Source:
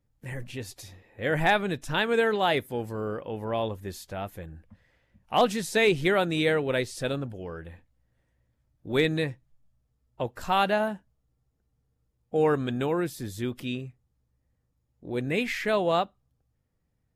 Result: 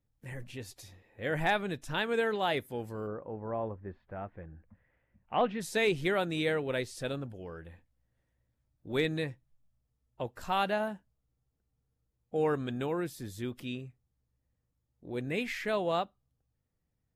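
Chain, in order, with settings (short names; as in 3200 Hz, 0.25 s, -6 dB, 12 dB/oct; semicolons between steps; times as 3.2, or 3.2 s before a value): 3.06–5.6 LPF 1400 Hz -> 2900 Hz 24 dB/oct; gain -6 dB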